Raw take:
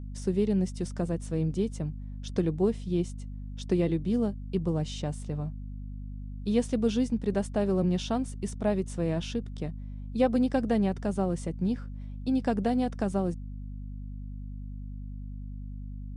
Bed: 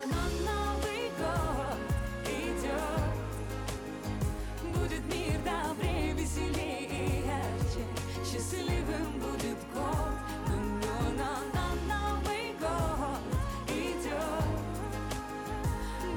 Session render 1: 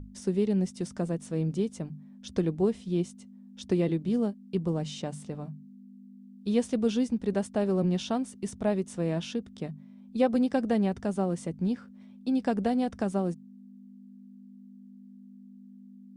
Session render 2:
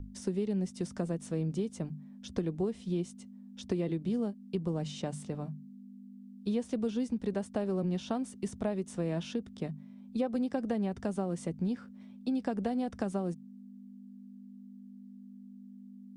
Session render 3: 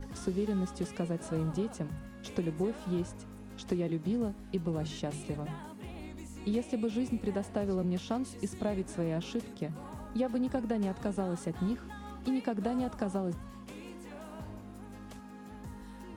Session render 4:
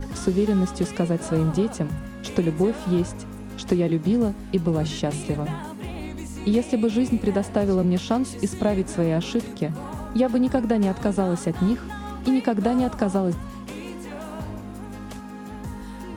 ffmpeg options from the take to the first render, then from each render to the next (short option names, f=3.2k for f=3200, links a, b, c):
-af "bandreject=f=50:t=h:w=6,bandreject=f=100:t=h:w=6,bandreject=f=150:t=h:w=6"
-filter_complex "[0:a]acrossover=split=350|1600[a][b][c];[c]alimiter=level_in=12.5dB:limit=-24dB:level=0:latency=1:release=71,volume=-12.5dB[d];[a][b][d]amix=inputs=3:normalize=0,acompressor=threshold=-29dB:ratio=4"
-filter_complex "[1:a]volume=-14dB[a];[0:a][a]amix=inputs=2:normalize=0"
-af "volume=11dB"